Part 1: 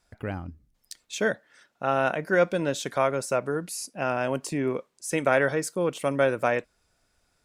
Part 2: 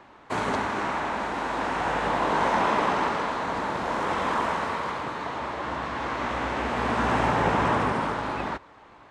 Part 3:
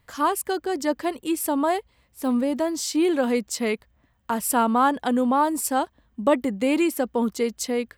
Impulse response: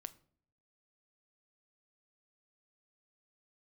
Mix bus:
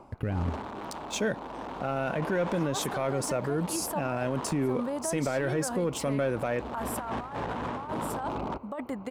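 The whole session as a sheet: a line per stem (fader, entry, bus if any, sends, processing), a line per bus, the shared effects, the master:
-2.5 dB, 0.00 s, no bus, no send, bass shelf 330 Hz +10 dB; waveshaping leveller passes 1
+2.0 dB, 0.00 s, bus A, no send, local Wiener filter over 25 samples; saturation -17 dBFS, distortion -20 dB; auto duck -12 dB, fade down 0.25 s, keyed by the first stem
-11.5 dB, 2.45 s, bus A, no send, high-order bell 1 kHz +9.5 dB
bus A: 0.0 dB, compressor with a negative ratio -27 dBFS, ratio -0.5; peak limiter -24.5 dBFS, peak gain reduction 9.5 dB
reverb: none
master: peak limiter -20.5 dBFS, peak gain reduction 12.5 dB

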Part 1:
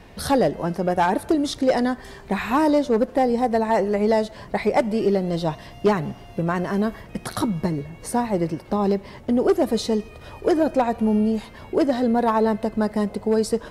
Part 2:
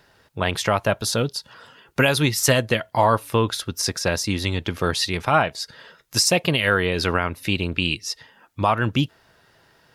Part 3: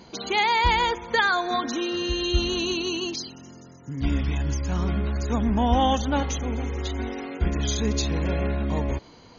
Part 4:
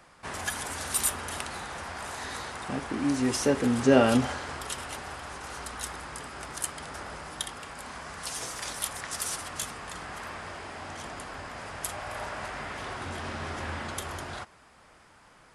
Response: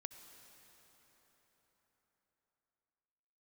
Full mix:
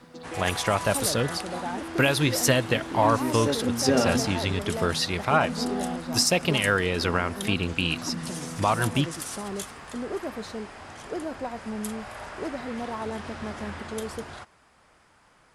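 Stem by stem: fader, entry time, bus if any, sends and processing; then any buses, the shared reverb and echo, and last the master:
-14.0 dB, 0.65 s, no send, none
-5.0 dB, 0.00 s, send -11 dB, none
-0.5 dB, 0.00 s, no send, vocoder on a held chord bare fifth, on E3; auto duck -9 dB, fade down 0.30 s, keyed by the second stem
-3.0 dB, 0.00 s, no send, hard clipper -12 dBFS, distortion -24 dB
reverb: on, RT60 4.6 s, pre-delay 58 ms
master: none

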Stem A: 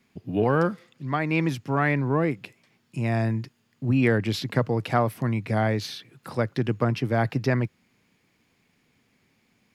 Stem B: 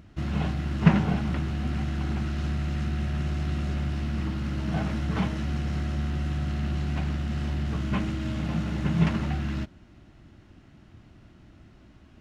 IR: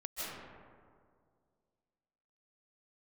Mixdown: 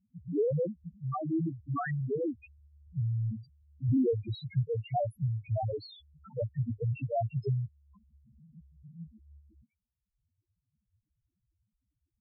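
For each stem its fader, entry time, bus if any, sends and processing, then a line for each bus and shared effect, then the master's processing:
+3.0 dB, 0.00 s, no send, none
-16.0 dB, 0.00 s, no send, none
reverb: none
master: reverb removal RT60 1.2 s; loudest bins only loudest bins 1

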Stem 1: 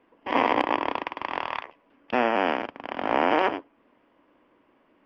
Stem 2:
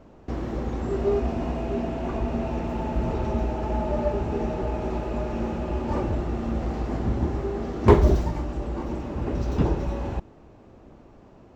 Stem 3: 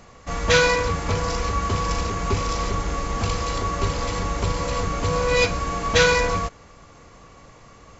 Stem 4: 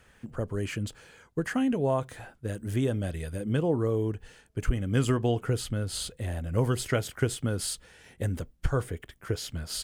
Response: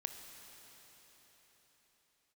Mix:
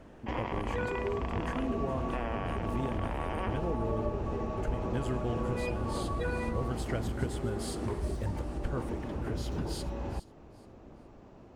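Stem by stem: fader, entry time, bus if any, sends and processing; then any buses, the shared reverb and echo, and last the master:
-9.5 dB, 0.00 s, bus A, no send, no echo send, none
-2.5 dB, 0.00 s, bus A, no send, no echo send, compression 3:1, threshold -31 dBFS, peak gain reduction 16.5 dB
-8.0 dB, 0.25 s, bus B, no send, no echo send, loudest bins only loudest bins 16
-6.5 dB, 0.00 s, bus B, send -9 dB, echo send -18 dB, none
bus A: 0.0 dB, peak limiter -24.5 dBFS, peak gain reduction 9.5 dB
bus B: 0.0 dB, treble shelf 5 kHz -11 dB; compression 2.5:1, threshold -37 dBFS, peak gain reduction 10.5 dB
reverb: on, pre-delay 21 ms
echo: feedback delay 418 ms, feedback 28%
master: none

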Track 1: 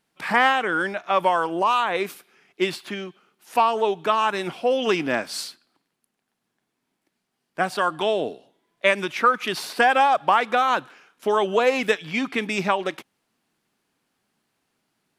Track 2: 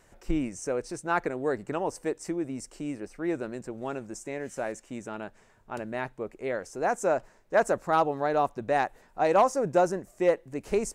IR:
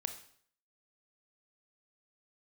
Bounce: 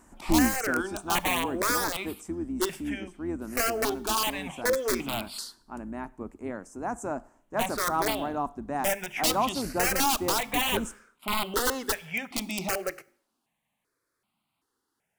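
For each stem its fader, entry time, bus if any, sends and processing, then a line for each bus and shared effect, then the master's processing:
-5.0 dB, 0.00 s, send -10.5 dB, hum notches 50/100/150/200/250/300/350/400 Hz; integer overflow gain 14.5 dB; stepped phaser 2.6 Hz 440–1700 Hz
+3.0 dB, 0.00 s, send -20 dB, octave divider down 2 oct, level -3 dB; graphic EQ 125/250/500/1000/2000/4000/8000 Hz -9/+12/-10/+6/-5/-11/+4 dB; auto duck -10 dB, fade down 1.25 s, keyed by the first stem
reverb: on, RT60 0.55 s, pre-delay 23 ms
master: none

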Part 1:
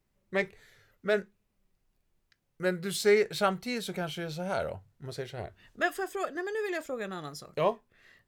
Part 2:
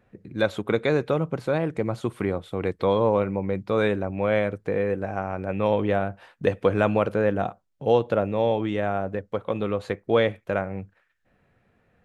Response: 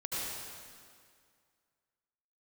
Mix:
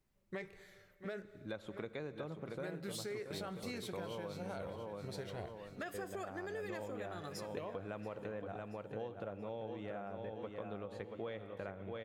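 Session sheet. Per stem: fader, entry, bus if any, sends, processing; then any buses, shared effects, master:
-4.0 dB, 0.00 s, send -23.5 dB, echo send -16.5 dB, peak limiter -23.5 dBFS, peak gain reduction 10 dB
-15.5 dB, 1.10 s, muted 4.67–5.94 s, send -19.5 dB, echo send -6.5 dB, none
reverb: on, RT60 2.1 s, pre-delay 67 ms
echo: feedback delay 680 ms, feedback 42%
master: compression, threshold -40 dBFS, peak gain reduction 11.5 dB

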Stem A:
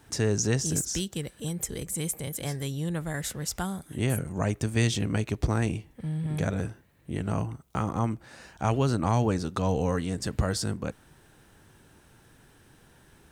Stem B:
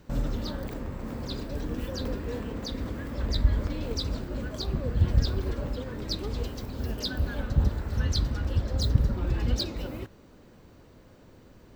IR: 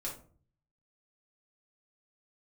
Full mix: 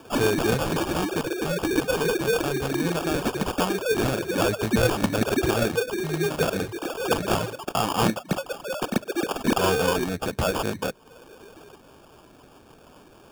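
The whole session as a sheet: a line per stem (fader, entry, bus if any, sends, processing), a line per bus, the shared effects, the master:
+2.0 dB, 0.00 s, muted 8.18–9.44 s, no send, overdrive pedal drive 17 dB, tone 3.2 kHz, clips at -13 dBFS; hum notches 50/100/150/200 Hz
0.0 dB, 0.00 s, send -12 dB, formants replaced by sine waves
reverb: on, RT60 0.45 s, pre-delay 3 ms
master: reverb removal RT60 0.56 s; sample-and-hold 22×

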